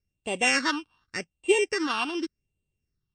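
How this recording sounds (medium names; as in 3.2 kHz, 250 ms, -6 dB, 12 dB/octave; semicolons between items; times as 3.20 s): a buzz of ramps at a fixed pitch in blocks of 16 samples; phasing stages 6, 0.86 Hz, lowest notch 520–1500 Hz; MP3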